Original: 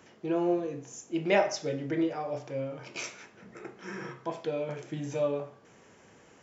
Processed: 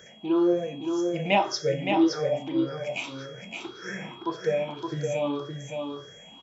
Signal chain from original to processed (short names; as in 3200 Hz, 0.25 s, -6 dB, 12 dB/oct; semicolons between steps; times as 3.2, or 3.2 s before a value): moving spectral ripple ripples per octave 0.55, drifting +1.8 Hz, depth 18 dB; whine 3300 Hz -52 dBFS; echo 0.567 s -5 dB